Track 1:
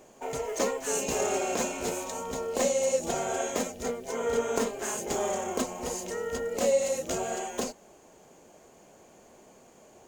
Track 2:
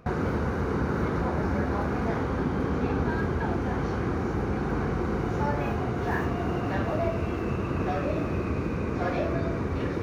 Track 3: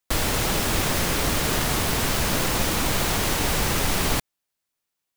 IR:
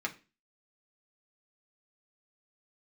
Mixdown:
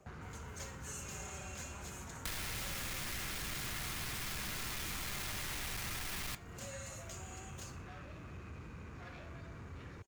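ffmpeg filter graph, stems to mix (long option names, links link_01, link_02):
-filter_complex "[0:a]aecho=1:1:5.2:0.65,volume=-15.5dB,asplit=2[link_01][link_02];[link_02]volume=-11.5dB[link_03];[1:a]asoftclip=type=tanh:threshold=-26.5dB,volume=-13dB[link_04];[2:a]asoftclip=type=tanh:threshold=-26.5dB,adelay=2150,volume=-4.5dB,asplit=2[link_05][link_06];[link_06]volume=-4dB[link_07];[3:a]atrim=start_sample=2205[link_08];[link_07][link_08]afir=irnorm=-1:irlink=0[link_09];[link_03]aecho=0:1:61|122|183|244|305|366:1|0.46|0.212|0.0973|0.0448|0.0206[link_10];[link_01][link_04][link_05][link_09][link_10]amix=inputs=5:normalize=0,acrossover=split=160|1100[link_11][link_12][link_13];[link_11]acompressor=threshold=-45dB:ratio=4[link_14];[link_12]acompressor=threshold=-58dB:ratio=4[link_15];[link_13]acompressor=threshold=-41dB:ratio=4[link_16];[link_14][link_15][link_16]amix=inputs=3:normalize=0"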